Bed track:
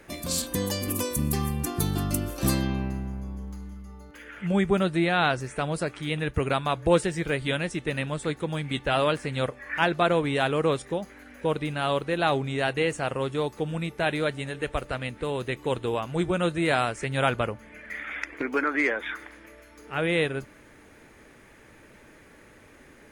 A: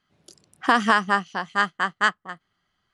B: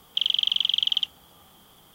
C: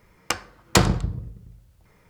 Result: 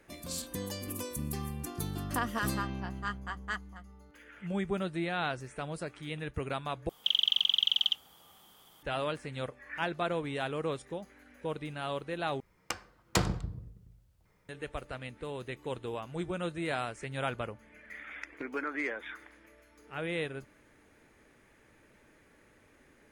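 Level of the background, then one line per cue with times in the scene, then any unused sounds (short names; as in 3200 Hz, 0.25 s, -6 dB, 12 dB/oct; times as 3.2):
bed track -10 dB
1.47 add A -17 dB + comb 4.2 ms, depth 50%
6.89 replace with B -4 dB + low shelf 370 Hz -7.5 dB
12.4 replace with C -11 dB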